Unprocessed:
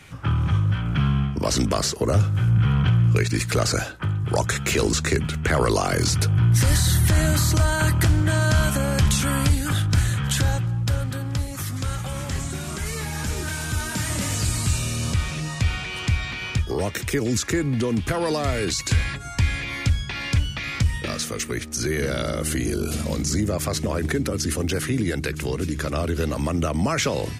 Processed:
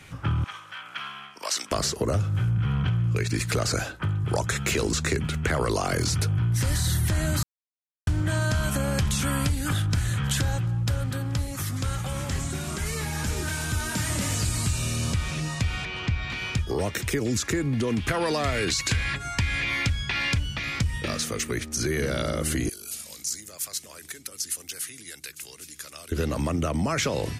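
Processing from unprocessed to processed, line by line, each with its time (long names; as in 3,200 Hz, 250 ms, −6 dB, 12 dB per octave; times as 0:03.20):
0:00.44–0:01.72: high-pass filter 1,100 Hz
0:07.43–0:08.07: silence
0:15.85–0:16.30: high-frequency loss of the air 130 metres
0:17.87–0:20.35: parametric band 2,200 Hz +5.5 dB 2.3 octaves
0:22.69–0:26.12: first-order pre-emphasis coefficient 0.97
whole clip: downward compressor, threshold −20 dBFS; level −1 dB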